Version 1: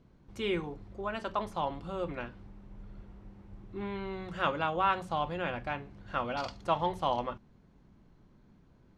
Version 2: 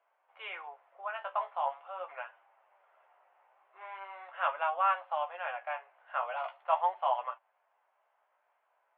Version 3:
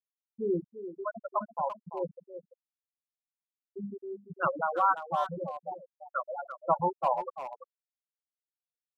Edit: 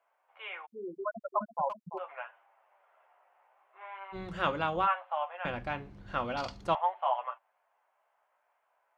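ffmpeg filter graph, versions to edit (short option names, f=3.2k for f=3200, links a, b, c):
-filter_complex "[0:a]asplit=2[a][b];[1:a]asplit=4[c][d][e][f];[c]atrim=end=0.67[g];[2:a]atrim=start=0.65:end=1.99[h];[d]atrim=start=1.97:end=4.16[i];[a]atrim=start=4.12:end=4.88[j];[e]atrim=start=4.84:end=5.452[k];[b]atrim=start=5.448:end=6.752[l];[f]atrim=start=6.748[m];[g][h]acrossfade=d=0.02:c1=tri:c2=tri[n];[n][i]acrossfade=d=0.02:c1=tri:c2=tri[o];[o][j]acrossfade=d=0.04:c1=tri:c2=tri[p];[p][k]acrossfade=d=0.04:c1=tri:c2=tri[q];[q][l]acrossfade=d=0.004:c1=hsin:c2=hsin[r];[r][m]acrossfade=d=0.004:c1=hsin:c2=hsin"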